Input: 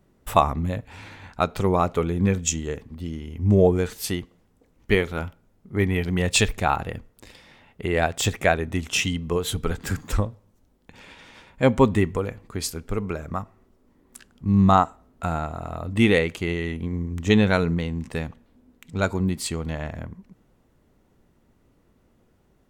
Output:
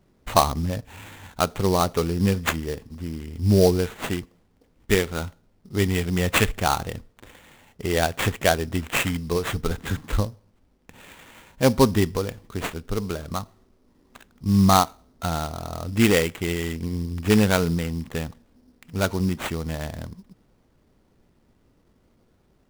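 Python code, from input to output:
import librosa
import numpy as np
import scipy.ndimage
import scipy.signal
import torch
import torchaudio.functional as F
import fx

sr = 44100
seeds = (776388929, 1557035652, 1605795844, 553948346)

y = fx.sample_hold(x, sr, seeds[0], rate_hz=5200.0, jitter_pct=20)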